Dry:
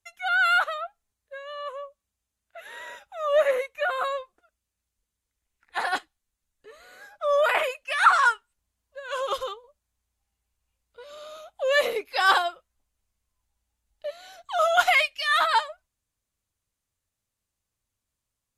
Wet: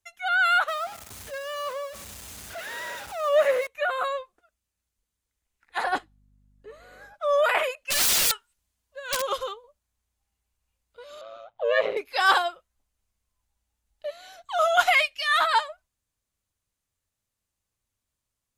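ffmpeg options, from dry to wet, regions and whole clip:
-filter_complex "[0:a]asettb=1/sr,asplit=3[a][b][c];[a]atrim=end=0.684[d];[b]atrim=start=0.68:end=3.67,asetpts=PTS-STARTPTS,afade=t=in:d=0.004:c=qsin,afade=t=out:st=2.986:d=0.004:c=qsin,aeval=exprs='val(0)+0.5*0.0188*sgn(val(0))':c=same,highpass=f=72:w=0.5412,highpass=f=72:w=1.3066,aecho=1:1:86|172|258|344:0.0794|0.0469|0.0277|0.0163,atrim=end_sample=131859[e];[c]atrim=start=3.666[f];[d][e]acrossfade=d=0.004:c1=hsin:c2=qsin[g];[g][f]acrossfade=d=0.004:c1=qsin:c2=hsin,asettb=1/sr,asplit=3[h][i][j];[h]atrim=end=5.844[k];[i]atrim=start=5.84:end=7.14,asetpts=PTS-STARTPTS,afade=t=in:d=0.004:c=qsin,afade=t=out:st=1.296:d=0.004:c=qsin,aeval=exprs='val(0)+0.000501*(sin(2*PI*50*n/s)+sin(2*PI*2*50*n/s)/2+sin(2*PI*3*50*n/s)/3+sin(2*PI*4*50*n/s)/4+sin(2*PI*5*50*n/s)/5)':c=same,tiltshelf=f=1.2k:g=5.5[l];[j]atrim=start=7.136[m];[k][l]acrossfade=d=0.004:c1=hsin:c2=qsin[n];[n][m]acrossfade=d=0.004:c1=qsin:c2=hsin,asettb=1/sr,asplit=3[o][p][q];[o]atrim=end=7.754[r];[p]atrim=start=7.75:end=9.22,asetpts=PTS-STARTPTS,afade=t=in:d=0.004:c=qsin,afade=t=out:st=1.466:d=0.004:c=qsin,aeval=exprs='(mod(14.1*val(0)+1,2)-1)/14.1':c=same,adynamicequalizer=threshold=0.00501:dfrequency=1900:dqfactor=0.7:tfrequency=1900:tqfactor=0.7:attack=5:release=100:ratio=0.375:range=3.5:mode=boostabove:tftype=highshelf[s];[q]atrim=start=9.216[t];[r][s]acrossfade=d=0.004:c1=hsin:c2=qsin[u];[u][t]acrossfade=d=0.004:c1=qsin:c2=hsin,asettb=1/sr,asplit=3[v][w][x];[v]atrim=end=11.214[y];[w]atrim=start=11.21:end=11.97,asetpts=PTS-STARTPTS,afade=t=in:d=0.004:c=qsin,afade=t=out:st=0.756:d=0.004:c=qsin,lowpass=3k,equalizer=f=590:t=o:w=2:g=3,aeval=exprs='val(0)*sin(2*PI*56*n/s)':c=same[z];[x]atrim=start=11.966[aa];[y][z]acrossfade=d=0.004:c1=hsin:c2=qsin[ab];[ab][aa]acrossfade=d=0.004:c1=qsin:c2=hsin"

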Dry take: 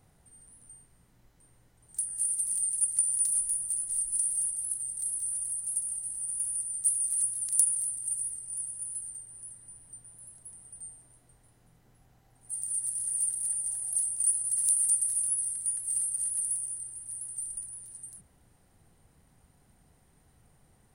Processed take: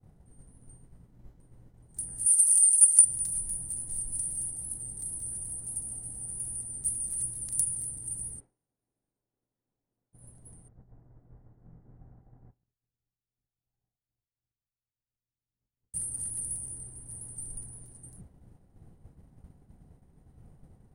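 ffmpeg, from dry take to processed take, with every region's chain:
-filter_complex "[0:a]asettb=1/sr,asplit=3[a][b][c];[a]atrim=end=2.264[d];[b]atrim=start=2.26:end=3.05,asetpts=PTS-STARTPTS,afade=t=in:d=0.004:c=qsin,afade=t=out:st=0.786:d=0.004:c=qsin,highpass=370,equalizer=f=8.9k:t=o:w=2.2:g=13.5[e];[c]atrim=start=3.046[f];[d][e]acrossfade=d=0.004:c1=hsin:c2=qsin[g];[g][f]acrossfade=d=0.004:c1=qsin:c2=hsin,asettb=1/sr,asplit=3[h][i][j];[h]atrim=end=8.404[k];[i]atrim=start=8.4:end=10.13,asetpts=PTS-STARTPTS,afade=t=in:d=0.004:c=qsin,afade=t=out:st=1.726:d=0.004:c=qsin,lowpass=f=6.7k:w=0.5412,lowpass=f=6.7k:w=1.3066,acrossover=split=230 2500:gain=0.141 1 0.2[l][m][n];[l][m][n]amix=inputs=3:normalize=0[o];[j]atrim=start=10.126[p];[k][o]acrossfade=d=0.004:c1=hsin:c2=qsin[q];[q][p]acrossfade=d=0.004:c1=qsin:c2=hsin,asettb=1/sr,asplit=3[r][s][t];[r]atrim=end=10.684[u];[s]atrim=start=10.68:end=15.94,asetpts=PTS-STARTPTS,afade=t=in:d=0.004:c=qsin,afade=t=out:st=5.256:d=0.004:c=qsin,acompressor=threshold=-44dB:ratio=6:attack=3.2:release=140:knee=1:detection=peak,lowpass=f=1.8k:w=0.5412,lowpass=f=1.8k:w=1.3066[v];[t]atrim=start=15.936[w];[u][v]acrossfade=d=0.004:c1=hsin:c2=qsin[x];[x][w]acrossfade=d=0.004:c1=qsin:c2=hsin,tiltshelf=f=850:g=9.5,agate=range=-33dB:threshold=-48dB:ratio=3:detection=peak,volume=5dB"

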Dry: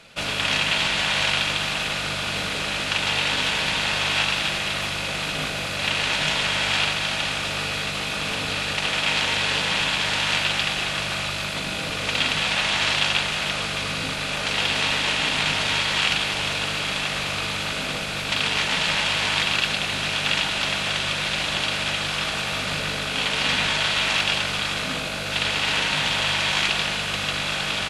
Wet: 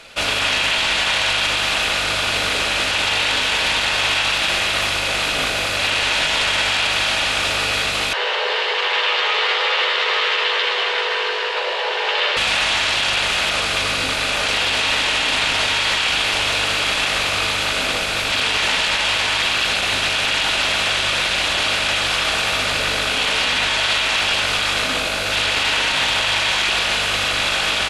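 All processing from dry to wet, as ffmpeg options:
-filter_complex "[0:a]asettb=1/sr,asplit=3[a][b][c];[a]atrim=end=8.134[d];[b]atrim=start=8.13:end=12.37,asetpts=PTS-STARTPTS,afade=t=in:d=0.004:c=qsin,afade=t=out:st=4.236:d=0.004:c=qsin,afreqshift=340,lowpass=2.8k,asplit=2[e][f];[f]adelay=12,volume=-5dB[g];[e][g]amix=inputs=2:normalize=0,atrim=end_sample=186984[h];[c]atrim=start=12.366[i];[d][h]acrossfade=d=0.004:c1=hsin:c2=qsin[j];[j][i]acrossfade=d=0.004:c1=qsin:c2=hsin,alimiter=limit=-17dB:level=0:latency=1:release=12,equalizer=f=160:t=o:w=0.99:g=-12,volume=7.5dB"

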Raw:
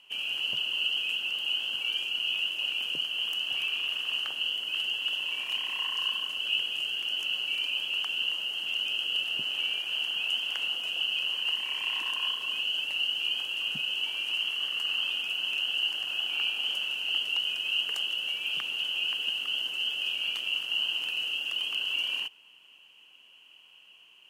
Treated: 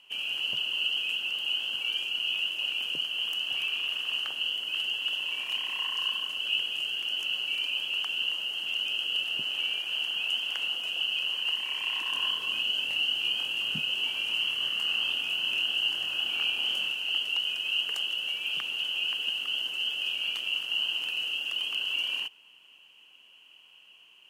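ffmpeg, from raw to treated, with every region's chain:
-filter_complex "[0:a]asettb=1/sr,asplit=3[a][b][c];[a]atrim=end=12.104[d];[b]atrim=start=12.1:end=16.92,asetpts=PTS-STARTPTS,afade=t=in:d=0.004:c=qsin,afade=t=out:st=4.816:d=0.004:c=qsin,lowshelf=f=250:g=8,asplit=2[e][f];[f]adelay=25,volume=-4.5dB[g];[e][g]amix=inputs=2:normalize=0,atrim=end_sample=212562[h];[c]atrim=start=16.916[i];[d][h]acrossfade=d=0.004:c1=hsin:c2=qsin[j];[j][i]acrossfade=d=0.004:c1=qsin:c2=hsin"

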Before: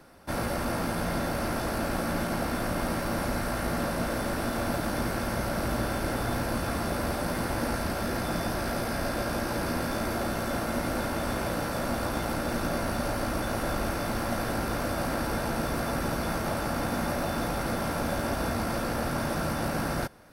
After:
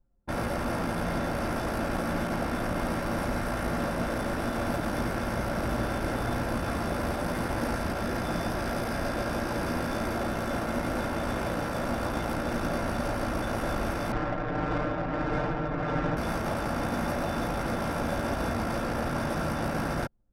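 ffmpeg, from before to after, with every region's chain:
-filter_complex "[0:a]asettb=1/sr,asplit=3[a][b][c];[a]atrim=end=14.124[d];[b]atrim=start=14.12:end=16.17,asetpts=PTS-STARTPTS,afade=t=in:d=0.004:c=qsin,afade=t=out:st=2.046:d=0.004:c=qsin,tremolo=f=1.6:d=0.28,adynamicsmooth=sensitivity=5:basefreq=1.9k,aecho=1:1:6.6:0.85,atrim=end_sample=90405[e];[c]atrim=start=16.166[f];[d][e]acrossfade=d=0.004:c1=hsin:c2=qsin[g];[g][f]acrossfade=d=0.004:c1=qsin:c2=hsin,bandreject=f=4.3k:w=9,anlmdn=3.98"

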